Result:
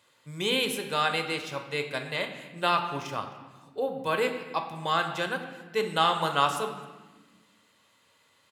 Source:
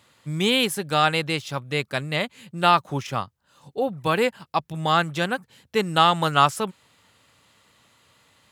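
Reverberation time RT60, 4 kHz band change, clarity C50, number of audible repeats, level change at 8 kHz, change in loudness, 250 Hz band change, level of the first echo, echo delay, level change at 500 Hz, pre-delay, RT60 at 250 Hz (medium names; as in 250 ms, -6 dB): 1.3 s, -5.0 dB, 8.0 dB, 1, -5.5 dB, -5.5 dB, -8.5 dB, -22.0 dB, 262 ms, -4.5 dB, 7 ms, 2.1 s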